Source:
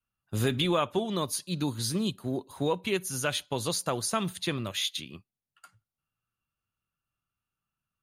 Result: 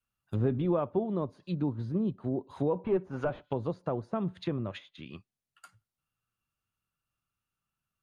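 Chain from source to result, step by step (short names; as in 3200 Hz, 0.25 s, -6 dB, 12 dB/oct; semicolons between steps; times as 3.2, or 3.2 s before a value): 2.75–3.42 overdrive pedal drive 18 dB, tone 1200 Hz, clips at -15 dBFS; treble ducked by the level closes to 750 Hz, closed at -28 dBFS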